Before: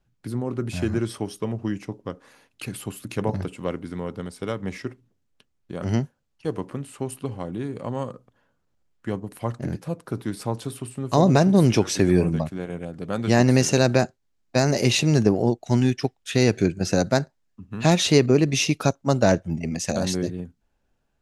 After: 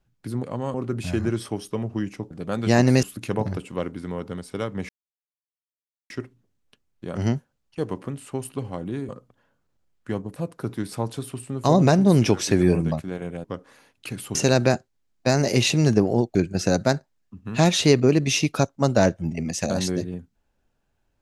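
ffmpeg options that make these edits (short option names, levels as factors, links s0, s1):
-filter_complex "[0:a]asplit=11[s0][s1][s2][s3][s4][s5][s6][s7][s8][s9][s10];[s0]atrim=end=0.432[s11];[s1]atrim=start=7.758:end=8.072[s12];[s2]atrim=start=0.428:end=2.002[s13];[s3]atrim=start=12.918:end=13.642[s14];[s4]atrim=start=2.908:end=4.77,asetpts=PTS-STARTPTS,afade=t=out:st=1.858:d=0.004:c=hsin,apad=pad_dur=1.21[s15];[s5]atrim=start=4.77:end=7.762,asetpts=PTS-STARTPTS,afade=t=in:d=0.004:c=hsin[s16];[s6]atrim=start=8.068:end=9.342[s17];[s7]atrim=start=9.838:end=12.922[s18];[s8]atrim=start=1.998:end=2.912[s19];[s9]atrim=start=13.638:end=15.642[s20];[s10]atrim=start=16.608[s21];[s11][s12]acrossfade=d=0.004:c1=hsin:c2=hsin[s22];[s22][s13]acrossfade=d=0.004:c1=hsin:c2=hsin[s23];[s23][s14]acrossfade=d=0.004:c1=hsin:c2=hsin[s24];[s15][s16]concat=n=2:v=0:a=1[s25];[s24][s25]acrossfade=d=0.004:c1=hsin:c2=hsin[s26];[s26][s17]acrossfade=d=0.004:c1=hsin:c2=hsin[s27];[s27][s18]acrossfade=d=0.004:c1=hsin:c2=hsin[s28];[s28][s19]acrossfade=d=0.004:c1=hsin:c2=hsin[s29];[s29][s20]acrossfade=d=0.004:c1=hsin:c2=hsin[s30];[s30][s21]acrossfade=d=0.004:c1=hsin:c2=hsin"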